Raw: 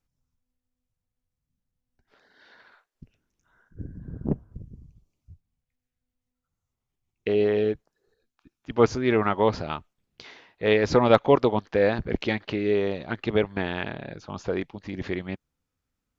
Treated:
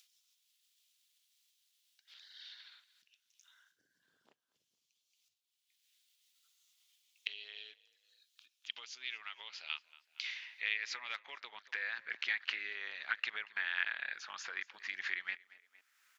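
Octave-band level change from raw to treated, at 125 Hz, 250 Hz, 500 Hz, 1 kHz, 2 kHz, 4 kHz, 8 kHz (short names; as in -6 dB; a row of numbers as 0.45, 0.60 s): under -40 dB, under -40 dB, under -40 dB, -22.0 dB, -3.5 dB, -4.0 dB, n/a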